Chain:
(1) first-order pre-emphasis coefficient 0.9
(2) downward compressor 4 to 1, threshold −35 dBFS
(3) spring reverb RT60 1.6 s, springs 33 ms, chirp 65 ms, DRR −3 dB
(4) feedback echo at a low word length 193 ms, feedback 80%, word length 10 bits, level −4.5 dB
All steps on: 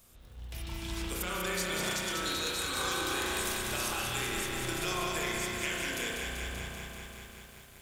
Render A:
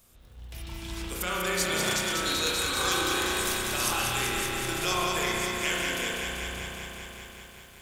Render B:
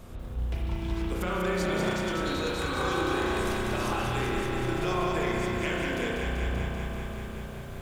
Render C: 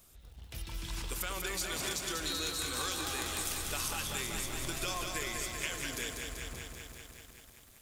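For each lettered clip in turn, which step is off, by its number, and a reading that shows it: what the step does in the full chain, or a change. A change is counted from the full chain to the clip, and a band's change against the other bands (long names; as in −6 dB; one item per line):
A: 2, average gain reduction 2.5 dB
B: 1, 8 kHz band −15.0 dB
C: 3, 8 kHz band +4.5 dB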